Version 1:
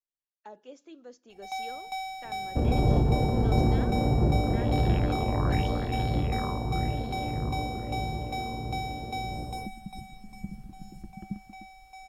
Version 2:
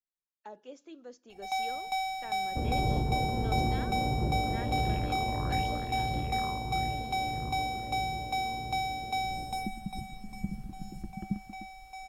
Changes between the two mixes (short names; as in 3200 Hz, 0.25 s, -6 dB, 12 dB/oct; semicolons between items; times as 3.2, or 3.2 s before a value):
first sound +3.0 dB; second sound -7.0 dB